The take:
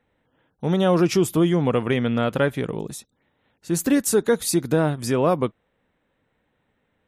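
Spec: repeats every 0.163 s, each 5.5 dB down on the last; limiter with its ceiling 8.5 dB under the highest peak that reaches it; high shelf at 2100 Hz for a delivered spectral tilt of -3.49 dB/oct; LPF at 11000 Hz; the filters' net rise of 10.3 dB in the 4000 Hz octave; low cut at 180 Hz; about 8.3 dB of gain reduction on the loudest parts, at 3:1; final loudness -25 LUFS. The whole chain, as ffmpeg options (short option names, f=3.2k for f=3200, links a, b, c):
-af "highpass=180,lowpass=11k,highshelf=f=2.1k:g=9,equalizer=f=4k:t=o:g=4.5,acompressor=threshold=-24dB:ratio=3,alimiter=limit=-19dB:level=0:latency=1,aecho=1:1:163|326|489|652|815|978|1141:0.531|0.281|0.149|0.079|0.0419|0.0222|0.0118,volume=4dB"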